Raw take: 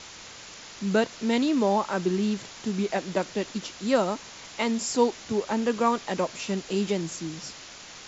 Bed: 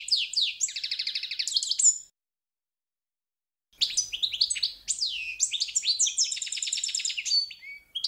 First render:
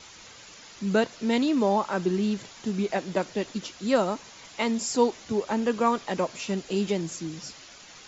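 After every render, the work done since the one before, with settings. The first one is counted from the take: denoiser 7 dB, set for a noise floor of -45 dBFS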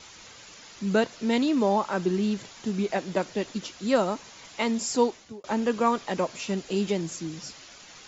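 4.99–5.44 fade out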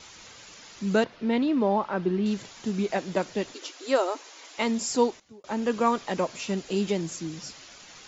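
1.04–2.26 air absorption 250 m; 3.54–4.58 brick-wall FIR high-pass 260 Hz; 5.2–5.74 fade in linear, from -13.5 dB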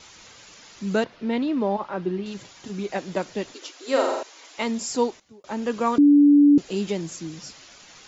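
1.76–2.95 notch comb 220 Hz; 3.83–4.23 flutter echo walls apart 7.6 m, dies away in 0.86 s; 5.98–6.58 bleep 289 Hz -10.5 dBFS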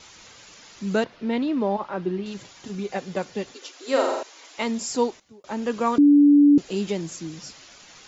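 2.75–3.73 notch comb 320 Hz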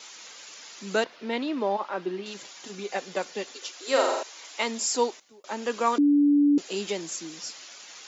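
HPF 290 Hz 12 dB/oct; tilt +1.5 dB/oct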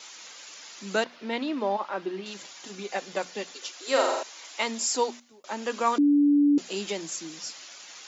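bell 430 Hz -3 dB 0.39 oct; notches 60/120/180/240 Hz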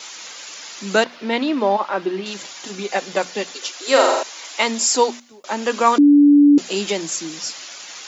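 gain +9.5 dB; limiter -2 dBFS, peak gain reduction 1 dB

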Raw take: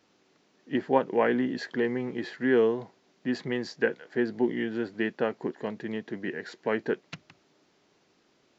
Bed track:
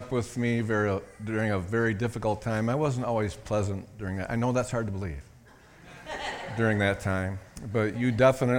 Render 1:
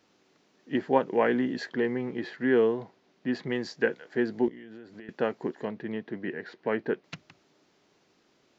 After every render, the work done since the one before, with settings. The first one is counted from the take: 1.69–3.5 air absorption 80 m; 4.48–5.09 compressor 16:1, threshold -41 dBFS; 5.65–7.04 air absorption 190 m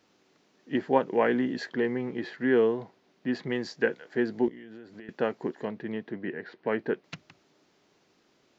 6.12–6.67 air absorption 110 m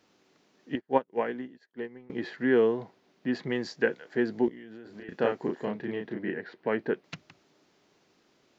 0.75–2.1 upward expander 2.5:1, over -43 dBFS; 4.82–6.4 doubler 34 ms -3 dB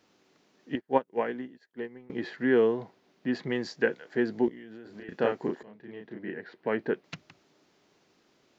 5.63–6.79 fade in, from -22.5 dB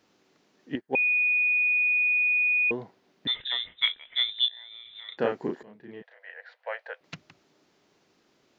0.95–2.71 bleep 2470 Hz -20.5 dBFS; 3.27–5.18 inverted band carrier 3800 Hz; 6.02–7.01 rippled Chebyshev high-pass 500 Hz, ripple 3 dB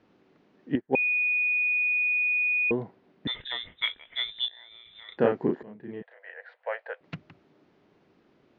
LPF 2800 Hz 12 dB/oct; low shelf 480 Hz +7.5 dB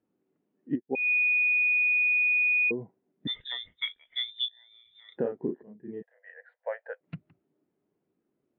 compressor 5:1, threshold -29 dBFS, peak gain reduction 11.5 dB; spectral expander 1.5:1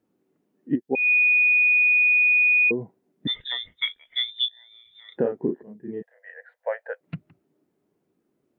gain +6 dB

